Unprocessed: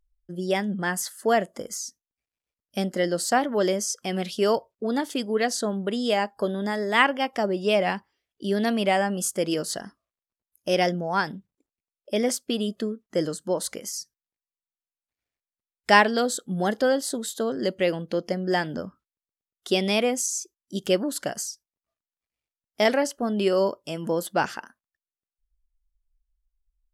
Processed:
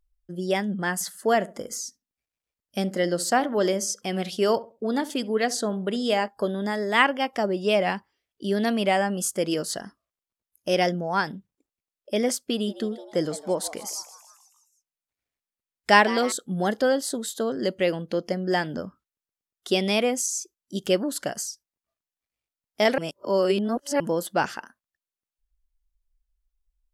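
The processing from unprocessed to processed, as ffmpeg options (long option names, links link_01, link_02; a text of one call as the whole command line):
ffmpeg -i in.wav -filter_complex "[0:a]asettb=1/sr,asplit=3[link_01][link_02][link_03];[link_01]atrim=end=0.944[link_04];[link_02]atrim=start=0.94:end=6.28,asetpts=PTS-STARTPTS,afade=type=in:duration=0.004:curve=qsin,afade=type=out:start_time=5.336:duration=0.004:curve=qsin,asplit=2[link_05][link_06];[link_06]adelay=68,lowpass=frequency=1000:poles=1,volume=-16dB,asplit=2[link_07][link_08];[link_08]adelay=68,lowpass=frequency=1000:poles=1,volume=0.3,asplit=2[link_09][link_10];[link_10]adelay=68,lowpass=frequency=1000:poles=1,volume=0.3[link_11];[link_05][link_07][link_09][link_11]amix=inputs=4:normalize=0,atrim=end_sample=235494[link_12];[link_03]atrim=start=6.276[link_13];[link_04][link_12]acrossfade=duration=0.004:curve1=hsin:curve2=qsin[link_14];[link_14][link_13]acrossfade=duration=0.004:curve1=qsin:curve2=hsin,asettb=1/sr,asplit=3[link_15][link_16][link_17];[link_15]atrim=end=12.514[link_18];[link_16]atrim=start=12.51:end=16.32,asetpts=PTS-STARTPTS,afade=type=in:duration=0.004:curve=qsin,afade=type=out:start_time=3.806:duration=0.004:curve=qsin,asplit=6[link_19][link_20][link_21][link_22][link_23][link_24];[link_20]adelay=158,afreqshift=140,volume=-16dB[link_25];[link_21]adelay=316,afreqshift=280,volume=-21dB[link_26];[link_22]adelay=474,afreqshift=420,volume=-26.1dB[link_27];[link_23]adelay=632,afreqshift=560,volume=-31.1dB[link_28];[link_24]adelay=790,afreqshift=700,volume=-36.1dB[link_29];[link_19][link_25][link_26][link_27][link_28][link_29]amix=inputs=6:normalize=0,atrim=end_sample=168021[link_30];[link_17]atrim=start=16.316[link_31];[link_18][link_30]acrossfade=duration=0.004:curve1=hsin:curve2=qsin[link_32];[link_32][link_31]acrossfade=duration=0.004:curve1=qsin:curve2=hsin,asplit=3[link_33][link_34][link_35];[link_33]atrim=end=22.982[link_36];[link_34]atrim=start=22.978:end=24.002,asetpts=PTS-STARTPTS,areverse[link_37];[link_35]atrim=start=23.998[link_38];[link_36][link_37]acrossfade=duration=0.004:curve1=hsin:curve2=hsin[link_39];[link_39][link_38]acrossfade=duration=0.004:curve1=hsin:curve2=hsin" out.wav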